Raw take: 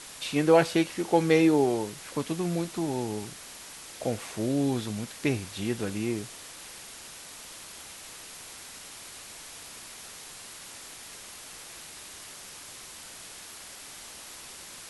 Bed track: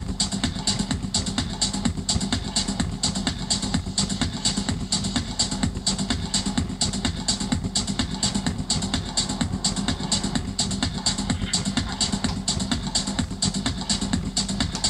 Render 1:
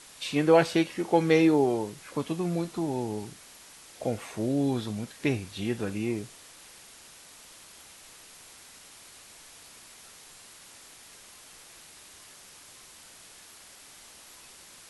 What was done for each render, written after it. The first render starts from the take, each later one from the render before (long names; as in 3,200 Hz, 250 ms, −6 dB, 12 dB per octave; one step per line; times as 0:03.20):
noise reduction from a noise print 6 dB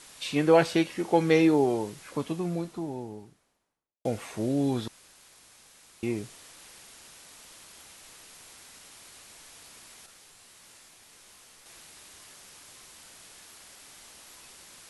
0:01.95–0:04.05: fade out and dull
0:04.88–0:06.03: fill with room tone
0:10.06–0:11.66: micro pitch shift up and down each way 54 cents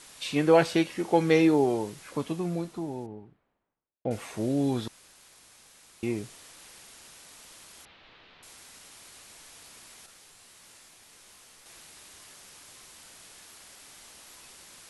0:03.06–0:04.11: high-frequency loss of the air 500 metres
0:07.85–0:08.43: Butterworth low-pass 3,900 Hz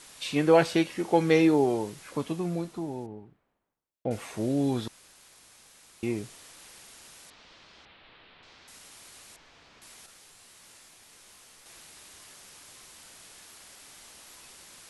0:07.30–0:08.68: low-pass filter 4,600 Hz 24 dB per octave
0:09.36–0:09.82: high-frequency loss of the air 190 metres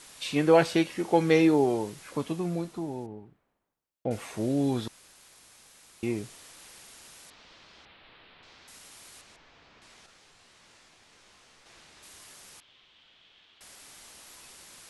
0:09.21–0:12.03: high-frequency loss of the air 91 metres
0:12.60–0:13.61: transistor ladder low-pass 3,600 Hz, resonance 65%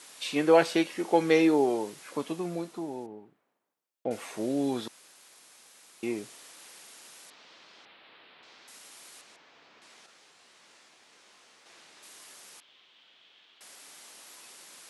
high-pass filter 250 Hz 12 dB per octave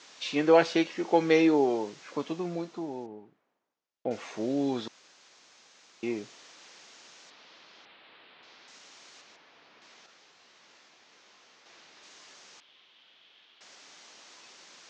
Butterworth low-pass 6,800 Hz 48 dB per octave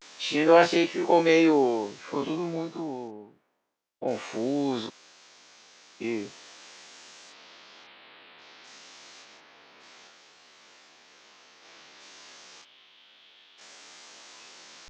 every bin's largest magnitude spread in time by 60 ms
pitch vibrato 0.31 Hz 51 cents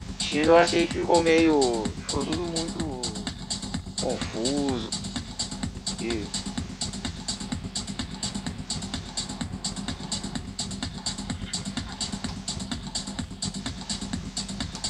mix in bed track −7.5 dB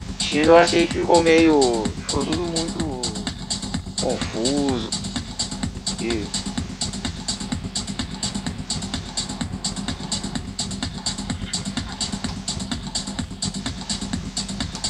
level +5 dB
brickwall limiter −1 dBFS, peak gain reduction 1 dB